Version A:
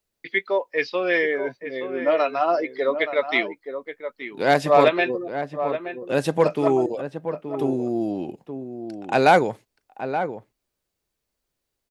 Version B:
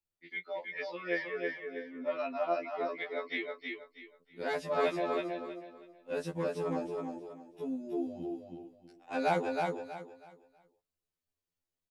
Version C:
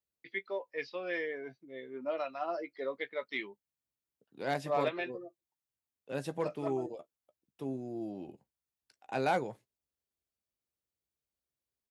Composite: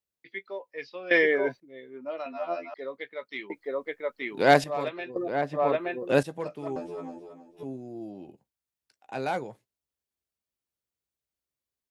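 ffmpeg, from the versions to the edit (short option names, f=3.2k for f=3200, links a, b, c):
-filter_complex "[0:a]asplit=3[a][b][c];[1:a]asplit=2[d][e];[2:a]asplit=6[f][g][h][i][j][k];[f]atrim=end=1.112[l];[a]atrim=start=1.108:end=1.602[m];[g]atrim=start=1.598:end=2.262[n];[d]atrim=start=2.258:end=2.742[o];[h]atrim=start=2.738:end=3.502[p];[b]atrim=start=3.498:end=4.642[q];[i]atrim=start=4.638:end=5.162[r];[c]atrim=start=5.158:end=6.232[s];[j]atrim=start=6.228:end=6.762[t];[e]atrim=start=6.758:end=7.632[u];[k]atrim=start=7.628[v];[l][m]acrossfade=d=0.004:c1=hsin:c2=hsin[w];[w][n]acrossfade=d=0.004:c1=hsin:c2=hsin[x];[x][o]acrossfade=d=0.004:c1=hsin:c2=hsin[y];[y][p]acrossfade=d=0.004:c1=hsin:c2=hsin[z];[z][q]acrossfade=d=0.004:c1=hsin:c2=hsin[aa];[aa][r]acrossfade=d=0.004:c1=hsin:c2=hsin[ab];[ab][s]acrossfade=d=0.004:c1=hsin:c2=hsin[ac];[ac][t]acrossfade=d=0.004:c1=hsin:c2=hsin[ad];[ad][u]acrossfade=d=0.004:c1=hsin:c2=hsin[ae];[ae][v]acrossfade=d=0.004:c1=hsin:c2=hsin"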